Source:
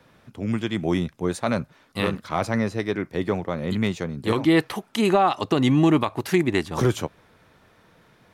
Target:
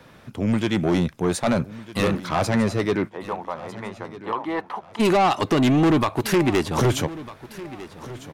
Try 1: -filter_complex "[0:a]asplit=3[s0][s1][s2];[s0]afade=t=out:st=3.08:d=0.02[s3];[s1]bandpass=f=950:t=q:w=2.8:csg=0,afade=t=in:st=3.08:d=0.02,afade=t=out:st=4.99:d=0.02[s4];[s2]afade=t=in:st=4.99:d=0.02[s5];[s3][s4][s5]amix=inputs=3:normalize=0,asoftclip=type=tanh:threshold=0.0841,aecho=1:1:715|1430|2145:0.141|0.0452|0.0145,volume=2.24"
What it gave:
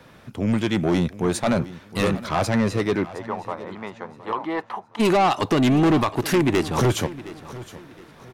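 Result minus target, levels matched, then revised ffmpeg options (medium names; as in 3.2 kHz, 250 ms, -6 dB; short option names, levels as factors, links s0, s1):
echo 536 ms early
-filter_complex "[0:a]asplit=3[s0][s1][s2];[s0]afade=t=out:st=3.08:d=0.02[s3];[s1]bandpass=f=950:t=q:w=2.8:csg=0,afade=t=in:st=3.08:d=0.02,afade=t=out:st=4.99:d=0.02[s4];[s2]afade=t=in:st=4.99:d=0.02[s5];[s3][s4][s5]amix=inputs=3:normalize=0,asoftclip=type=tanh:threshold=0.0841,aecho=1:1:1251|2502|3753:0.141|0.0452|0.0145,volume=2.24"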